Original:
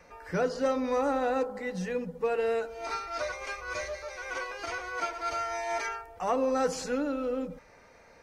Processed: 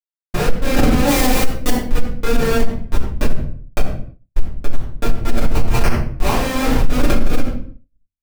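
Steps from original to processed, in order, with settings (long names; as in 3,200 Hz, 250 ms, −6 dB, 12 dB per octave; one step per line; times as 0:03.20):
0:06.06–0:06.88: graphic EQ with 15 bands 250 Hz +7 dB, 1,000 Hz +8 dB, 6,300 Hz +5 dB
comparator with hysteresis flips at −26 dBFS
compressor whose output falls as the input rises −38 dBFS, ratio −0.5
0:01.07–0:01.87: high-shelf EQ 4,500 Hz +10.5 dB
rectangular room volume 62 cubic metres, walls mixed, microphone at 2.4 metres
downward expander −41 dBFS
boost into a limiter +18.5 dB
level −3 dB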